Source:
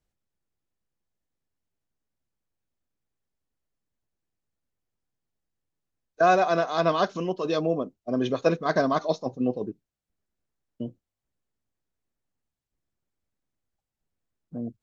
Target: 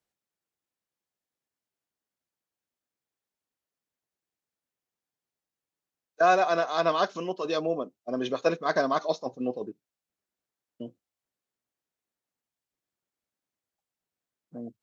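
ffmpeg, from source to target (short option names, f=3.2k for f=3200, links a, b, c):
-af "highpass=f=430:p=1"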